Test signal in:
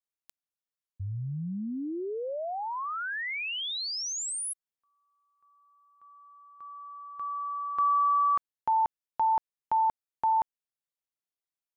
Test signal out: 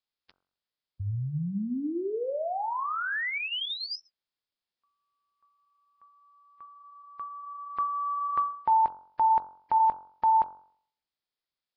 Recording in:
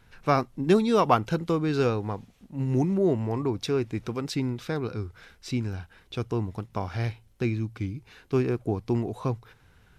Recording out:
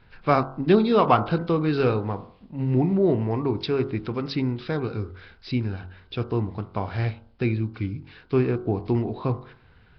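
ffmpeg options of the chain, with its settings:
ffmpeg -i in.wav -af "bandreject=frequency=45.97:width_type=h:width=4,bandreject=frequency=91.94:width_type=h:width=4,bandreject=frequency=137.91:width_type=h:width=4,bandreject=frequency=183.88:width_type=h:width=4,bandreject=frequency=229.85:width_type=h:width=4,bandreject=frequency=275.82:width_type=h:width=4,bandreject=frequency=321.79:width_type=h:width=4,bandreject=frequency=367.76:width_type=h:width=4,bandreject=frequency=413.73:width_type=h:width=4,bandreject=frequency=459.7:width_type=h:width=4,bandreject=frequency=505.67:width_type=h:width=4,bandreject=frequency=551.64:width_type=h:width=4,bandreject=frequency=597.61:width_type=h:width=4,bandreject=frequency=643.58:width_type=h:width=4,bandreject=frequency=689.55:width_type=h:width=4,bandreject=frequency=735.52:width_type=h:width=4,bandreject=frequency=781.49:width_type=h:width=4,bandreject=frequency=827.46:width_type=h:width=4,bandreject=frequency=873.43:width_type=h:width=4,bandreject=frequency=919.4:width_type=h:width=4,bandreject=frequency=965.37:width_type=h:width=4,bandreject=frequency=1011.34:width_type=h:width=4,bandreject=frequency=1057.31:width_type=h:width=4,bandreject=frequency=1103.28:width_type=h:width=4,bandreject=frequency=1149.25:width_type=h:width=4,bandreject=frequency=1195.22:width_type=h:width=4,bandreject=frequency=1241.19:width_type=h:width=4,bandreject=frequency=1287.16:width_type=h:width=4,bandreject=frequency=1333.13:width_type=h:width=4,bandreject=frequency=1379.1:width_type=h:width=4,bandreject=frequency=1425.07:width_type=h:width=4,bandreject=frequency=1471.04:width_type=h:width=4,bandreject=frequency=1517.01:width_type=h:width=4,bandreject=frequency=1562.98:width_type=h:width=4,volume=3.5dB" -ar 11025 -c:a nellymoser out.flv

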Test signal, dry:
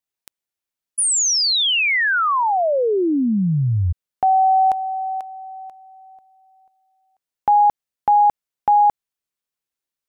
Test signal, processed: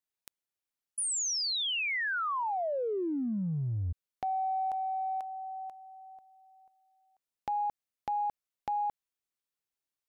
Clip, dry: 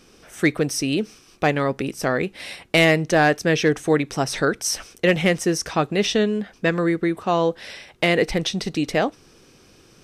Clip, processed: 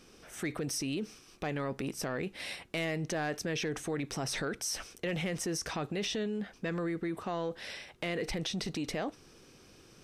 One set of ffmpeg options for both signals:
ffmpeg -i in.wav -af "acompressor=threshold=-26dB:ratio=5:attack=1.3:release=22:knee=1:detection=rms,volume=-5.5dB" out.wav

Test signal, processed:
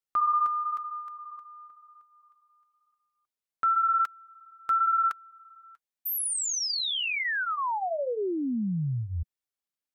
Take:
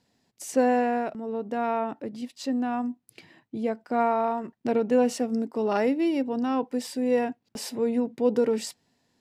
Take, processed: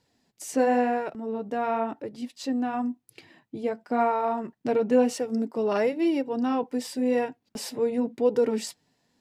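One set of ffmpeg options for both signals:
ffmpeg -i in.wav -af "flanger=delay=2.1:depth=4.7:regen=-44:speed=0.96:shape=sinusoidal,volume=4dB" out.wav

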